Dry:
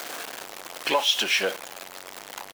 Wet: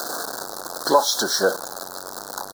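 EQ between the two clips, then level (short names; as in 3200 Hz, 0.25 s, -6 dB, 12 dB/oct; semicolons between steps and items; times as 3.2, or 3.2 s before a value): Chebyshev band-stop 1500–4100 Hz, order 3; +8.5 dB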